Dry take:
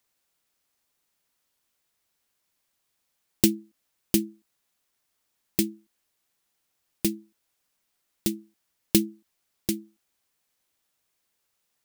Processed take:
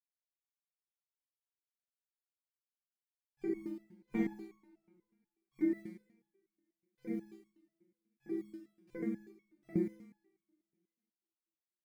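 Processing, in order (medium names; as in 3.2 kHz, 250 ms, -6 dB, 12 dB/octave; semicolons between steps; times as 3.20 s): FFT band-pass 130–2400 Hz; dynamic bell 420 Hz, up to +3 dB, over -40 dBFS, Q 2.3; in parallel at +2 dB: compressor with a negative ratio -32 dBFS, ratio -0.5; 3.54–4.27 s: on the sum: waveshaping leveller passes 1; bit crusher 10-bit; rotary cabinet horn 5 Hz, later 1.2 Hz, at 8.01 s; two-slope reverb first 0.73 s, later 2.2 s, from -24 dB, DRR -6 dB; resonator arpeggio 8.2 Hz 180–1100 Hz; trim +3 dB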